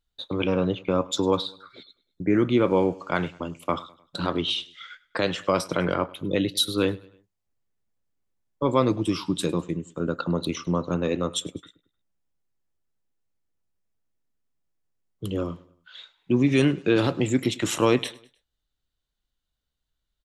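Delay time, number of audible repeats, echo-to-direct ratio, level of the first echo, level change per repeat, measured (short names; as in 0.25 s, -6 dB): 0.102 s, 2, -21.0 dB, -22.0 dB, -7.0 dB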